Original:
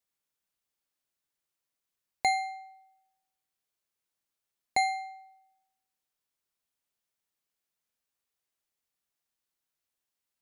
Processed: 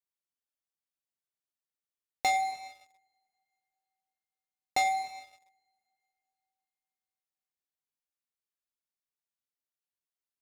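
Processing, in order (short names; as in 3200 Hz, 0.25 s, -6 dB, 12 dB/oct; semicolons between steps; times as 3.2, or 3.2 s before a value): two-slope reverb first 0.93 s, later 3.2 s, from -20 dB, DRR 7 dB; sample leveller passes 3; gain -6.5 dB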